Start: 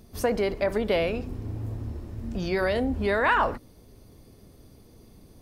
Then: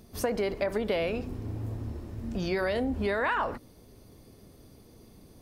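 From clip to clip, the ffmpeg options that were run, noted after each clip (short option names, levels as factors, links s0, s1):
-af "lowshelf=f=81:g=-5.5,acompressor=threshold=0.0562:ratio=5"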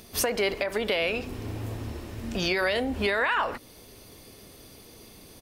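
-af "firequalizer=gain_entry='entry(170,0);entry(420,5);entry(2700,15);entry(4500,12)':delay=0.05:min_phase=1,alimiter=limit=0.168:level=0:latency=1:release=346"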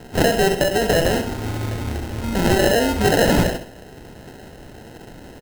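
-af "acrusher=samples=38:mix=1:aa=0.000001,aecho=1:1:66|132|198|264:0.335|0.124|0.0459|0.017,volume=2.82"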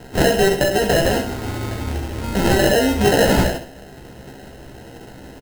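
-filter_complex "[0:a]asplit=2[s0][s1];[s1]adelay=15,volume=0.562[s2];[s0][s2]amix=inputs=2:normalize=0"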